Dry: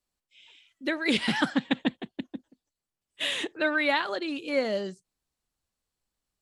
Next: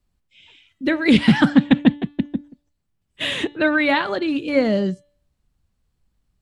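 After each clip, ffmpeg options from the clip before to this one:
-af "bass=f=250:g=15,treble=f=4000:g=-6,bandreject=f=290.1:t=h:w=4,bandreject=f=580.2:t=h:w=4,bandreject=f=870.3:t=h:w=4,bandreject=f=1160.4:t=h:w=4,bandreject=f=1450.5:t=h:w=4,bandreject=f=1740.6:t=h:w=4,bandreject=f=2030.7:t=h:w=4,bandreject=f=2320.8:t=h:w=4,bandreject=f=2610.9:t=h:w=4,bandreject=f=2901:t=h:w=4,bandreject=f=3191.1:t=h:w=4,bandreject=f=3481.2:t=h:w=4,bandreject=f=3771.3:t=h:w=4,bandreject=f=4061.4:t=h:w=4,volume=2.11"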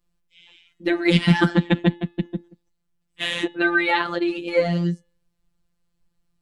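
-af "afftfilt=real='hypot(re,im)*cos(PI*b)':imag='0':win_size=1024:overlap=0.75,volume=1.26"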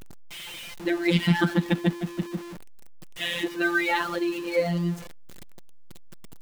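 -af "aeval=exprs='val(0)+0.5*0.0376*sgn(val(0))':c=same,volume=0.531"

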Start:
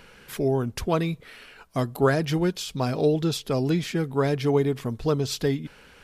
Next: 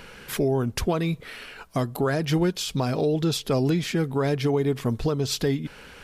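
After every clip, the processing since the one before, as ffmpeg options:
-af "alimiter=limit=0.0891:level=0:latency=1:release=319,volume=2"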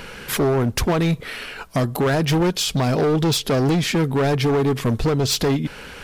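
-af "volume=15,asoftclip=hard,volume=0.0668,volume=2.51"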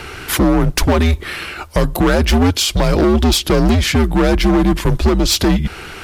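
-af "afreqshift=-89,volume=2"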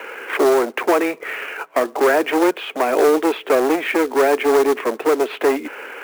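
-af "highpass=f=240:t=q:w=0.5412,highpass=f=240:t=q:w=1.307,lowpass=f=2500:t=q:w=0.5176,lowpass=f=2500:t=q:w=0.7071,lowpass=f=2500:t=q:w=1.932,afreqshift=84,acrusher=bits=4:mode=log:mix=0:aa=0.000001"

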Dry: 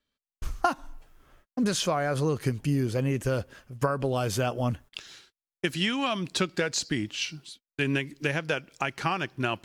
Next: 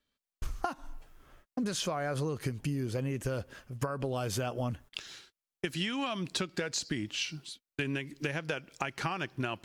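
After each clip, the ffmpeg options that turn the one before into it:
-af "acompressor=threshold=0.0316:ratio=6"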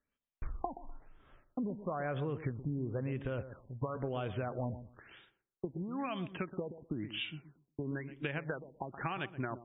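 -filter_complex "[0:a]asplit=2[s0][s1];[s1]adelay=125,lowpass=f=900:p=1,volume=0.282,asplit=2[s2][s3];[s3]adelay=125,lowpass=f=900:p=1,volume=0.2,asplit=2[s4][s5];[s5]adelay=125,lowpass=f=900:p=1,volume=0.2[s6];[s0][s2][s4][s6]amix=inputs=4:normalize=0,afftfilt=real='re*lt(b*sr/1024,970*pow(3800/970,0.5+0.5*sin(2*PI*1*pts/sr)))':imag='im*lt(b*sr/1024,970*pow(3800/970,0.5+0.5*sin(2*PI*1*pts/sr)))':win_size=1024:overlap=0.75,volume=0.668"

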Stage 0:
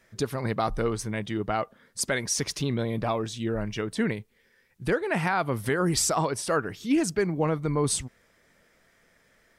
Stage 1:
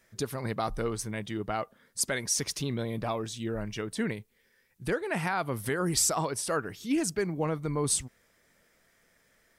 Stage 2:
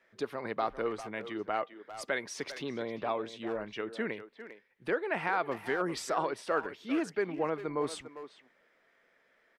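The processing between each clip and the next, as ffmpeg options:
-af "highshelf=f=6800:g=8.5,volume=0.596"
-filter_complex "[0:a]acrossover=split=260 3600:gain=0.112 1 0.0794[s0][s1][s2];[s0][s1][s2]amix=inputs=3:normalize=0,asplit=2[s3][s4];[s4]adelay=400,highpass=300,lowpass=3400,asoftclip=type=hard:threshold=0.0447,volume=0.282[s5];[s3][s5]amix=inputs=2:normalize=0"

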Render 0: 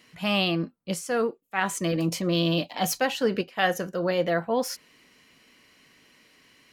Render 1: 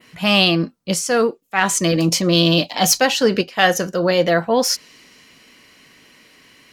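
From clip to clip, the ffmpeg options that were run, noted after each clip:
-af "adynamicequalizer=threshold=0.00447:dfrequency=5500:dqfactor=0.98:tfrequency=5500:tqfactor=0.98:attack=5:release=100:ratio=0.375:range=4:mode=boostabove:tftype=bell,acontrast=38,volume=1.41"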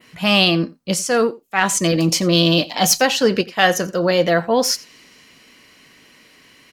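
-af "aecho=1:1:87:0.0841"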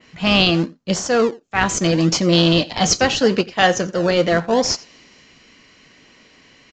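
-filter_complex "[0:a]asplit=2[s0][s1];[s1]acrusher=samples=34:mix=1:aa=0.000001:lfo=1:lforange=34:lforate=0.76,volume=0.282[s2];[s0][s2]amix=inputs=2:normalize=0,aresample=16000,aresample=44100,volume=0.891"

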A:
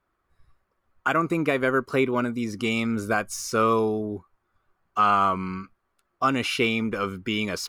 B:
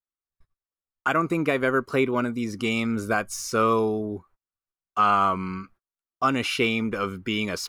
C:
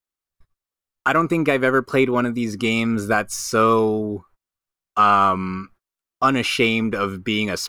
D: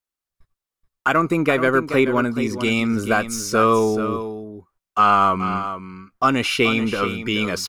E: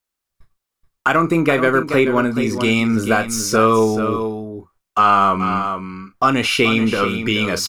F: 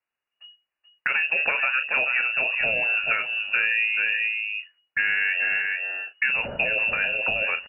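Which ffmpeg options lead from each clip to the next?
-af "agate=range=0.0316:threshold=0.00251:ratio=16:detection=peak"
-af "aeval=exprs='0.335*(cos(1*acos(clip(val(0)/0.335,-1,1)))-cos(1*PI/2))+0.00237*(cos(8*acos(clip(val(0)/0.335,-1,1)))-cos(8*PI/2))':c=same,volume=1.78"
-af "aecho=1:1:430:0.299"
-filter_complex "[0:a]asplit=2[s0][s1];[s1]acompressor=threshold=0.0631:ratio=6,volume=1.26[s2];[s0][s2]amix=inputs=2:normalize=0,asplit=2[s3][s4];[s4]adelay=36,volume=0.282[s5];[s3][s5]amix=inputs=2:normalize=0,volume=0.891"
-filter_complex "[0:a]acrossover=split=200|610[s0][s1][s2];[s0]acompressor=threshold=0.0316:ratio=4[s3];[s1]acompressor=threshold=0.0447:ratio=4[s4];[s2]acompressor=threshold=0.0447:ratio=4[s5];[s3][s4][s5]amix=inputs=3:normalize=0,lowpass=f=2500:t=q:w=0.5098,lowpass=f=2500:t=q:w=0.6013,lowpass=f=2500:t=q:w=0.9,lowpass=f=2500:t=q:w=2.563,afreqshift=-2900"

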